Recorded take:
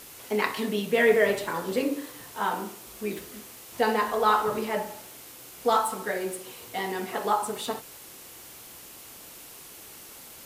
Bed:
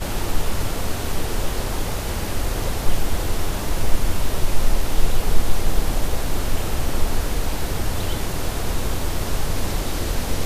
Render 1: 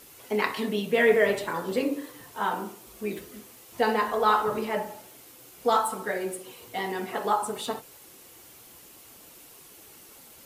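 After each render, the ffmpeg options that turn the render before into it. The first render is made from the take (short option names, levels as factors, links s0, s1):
-af "afftdn=nr=6:nf=-47"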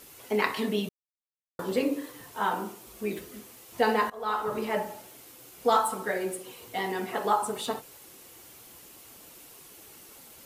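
-filter_complex "[0:a]asplit=4[s0][s1][s2][s3];[s0]atrim=end=0.89,asetpts=PTS-STARTPTS,afade=t=out:st=0.886:d=0.004:c=hsin[s4];[s1]atrim=start=0.89:end=1.59,asetpts=PTS-STARTPTS,volume=0[s5];[s2]atrim=start=1.59:end=4.1,asetpts=PTS-STARTPTS,afade=t=in:d=0.004:c=hsin,afade=t=out:st=2.506:d=0.004:c=hsin:silence=0.0891251[s6];[s3]atrim=start=4.1,asetpts=PTS-STARTPTS,afade=t=in:d=0.61:silence=0.0891251[s7];[s4][s5][s6][s7]concat=n=4:v=0:a=1"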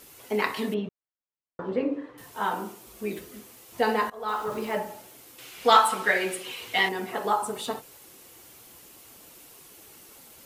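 -filter_complex "[0:a]asettb=1/sr,asplit=3[s0][s1][s2];[s0]atrim=end=0.744[s3];[s1]atrim=start=0.74:end=2.18,asetpts=PTS-STARTPTS,afade=t=in:d=0.004:c=qsin,afade=t=out:st=1.436:d=0.004:c=qsin,lowpass=1800[s4];[s2]atrim=start=2.176[s5];[s3][s4]acrossfade=d=0.004:c1=hsin:c2=qsin[s6];[s6][s5]acrossfade=d=0.004:c1=qsin:c2=hsin,asettb=1/sr,asplit=3[s7][s8][s9];[s7]atrim=end=4.284[s10];[s8]atrim=start=4.28:end=4.78,asetpts=PTS-STARTPTS,afade=t=in:d=0.004:c=qsin,afade=t=out:st=0.496:d=0.004:c=qsin,aeval=exprs='val(0)*gte(abs(val(0)),0.0075)':c=same[s11];[s9]atrim=start=4.776[s12];[s10][s11]acrossfade=d=0.004:c1=hsin:c2=qsin[s13];[s13][s12]acrossfade=d=0.004:c1=qsin:c2=hsin,asettb=1/sr,asplit=3[s14][s15][s16];[s14]atrim=end=5.384[s17];[s15]atrim=start=5.38:end=6.89,asetpts=PTS-STARTPTS,afade=t=in:d=0.004:c=qsin,afade=t=out:st=1.506:d=0.004:c=qsin,equalizer=f=2600:t=o:w=2.2:g=14[s18];[s16]atrim=start=6.886[s19];[s17][s18]acrossfade=d=0.004:c1=hsin:c2=qsin[s20];[s20][s19]acrossfade=d=0.004:c1=qsin:c2=hsin"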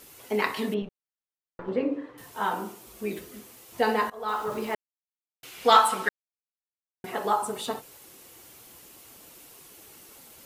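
-filter_complex "[0:a]asettb=1/sr,asplit=3[s0][s1][s2];[s0]atrim=end=0.824[s3];[s1]atrim=start=0.82:end=1.68,asetpts=PTS-STARTPTS,afade=t=in:d=0.004:c=qsin,afade=t=out:st=0.856:d=0.004:c=qsin,aeval=exprs='(tanh(25.1*val(0)+0.8)-tanh(0.8))/25.1':c=same[s4];[s2]atrim=start=1.676[s5];[s3][s4]acrossfade=d=0.004:c1=hsin:c2=qsin[s6];[s6][s5]acrossfade=d=0.004:c1=qsin:c2=hsin,asplit=5[s7][s8][s9][s10][s11];[s7]atrim=end=4.75,asetpts=PTS-STARTPTS,afade=t=out:st=4.746:d=0.004:c=hsin[s12];[s8]atrim=start=4.75:end=5.43,asetpts=PTS-STARTPTS,volume=0[s13];[s9]atrim=start=5.43:end=6.09,asetpts=PTS-STARTPTS,afade=t=in:d=0.004:c=hsin,afade=t=out:st=0.656:d=0.004:c=hsin[s14];[s10]atrim=start=6.09:end=7.04,asetpts=PTS-STARTPTS,volume=0[s15];[s11]atrim=start=7.04,asetpts=PTS-STARTPTS,afade=t=in:d=0.004:c=hsin[s16];[s12][s13][s14][s15][s16]concat=n=5:v=0:a=1"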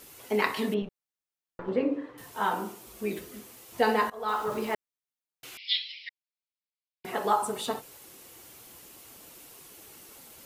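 -filter_complex "[0:a]asettb=1/sr,asplit=3[s0][s1][s2];[s0]atrim=end=5.574[s3];[s1]atrim=start=5.57:end=7.05,asetpts=PTS-STARTPTS,afade=t=in:d=0.004:c=qsin,afade=t=out:st=1.476:d=0.004:c=qsin,asuperpass=centerf=3300:order=20:qfactor=1[s4];[s2]atrim=start=7.046[s5];[s3][s4]acrossfade=d=0.004:c1=hsin:c2=qsin[s6];[s6][s5]acrossfade=d=0.004:c1=qsin:c2=hsin"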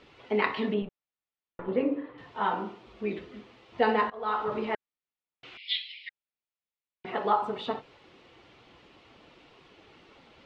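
-af "lowpass=f=3600:w=0.5412,lowpass=f=3600:w=1.3066,bandreject=f=1600:w=19"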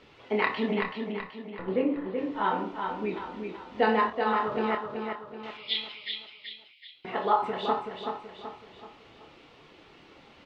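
-filter_complex "[0:a]asplit=2[s0][s1];[s1]adelay=27,volume=0.422[s2];[s0][s2]amix=inputs=2:normalize=0,aecho=1:1:379|758|1137|1516|1895:0.531|0.234|0.103|0.0452|0.0199"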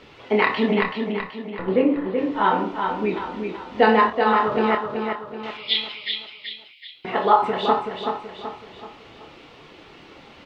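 -af "volume=2.51,alimiter=limit=0.794:level=0:latency=1"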